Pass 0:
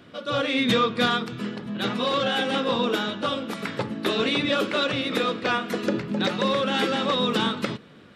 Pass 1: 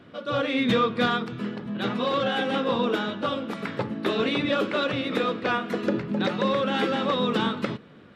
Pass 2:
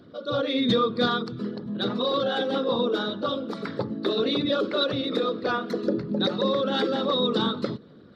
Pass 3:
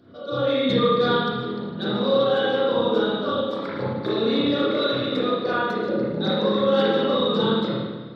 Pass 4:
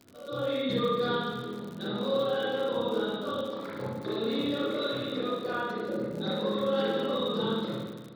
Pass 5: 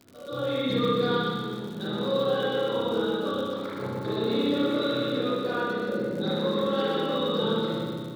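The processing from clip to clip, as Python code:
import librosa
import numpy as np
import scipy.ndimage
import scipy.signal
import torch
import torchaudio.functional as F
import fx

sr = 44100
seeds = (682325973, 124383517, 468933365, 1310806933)

y1 = fx.high_shelf(x, sr, hz=4000.0, db=-11.5)
y2 = fx.envelope_sharpen(y1, sr, power=1.5)
y2 = fx.high_shelf_res(y2, sr, hz=3400.0, db=9.0, q=3.0)
y3 = fx.rev_spring(y2, sr, rt60_s=1.3, pass_ms=(31, 53), chirp_ms=25, drr_db=-8.0)
y3 = F.gain(torch.from_numpy(y3), -5.0).numpy()
y4 = fx.dmg_crackle(y3, sr, seeds[0], per_s=95.0, level_db=-29.0)
y4 = F.gain(torch.from_numpy(y4), -8.5).numpy()
y5 = fx.echo_feedback(y4, sr, ms=124, feedback_pct=56, wet_db=-5)
y5 = F.gain(torch.from_numpy(y5), 1.5).numpy()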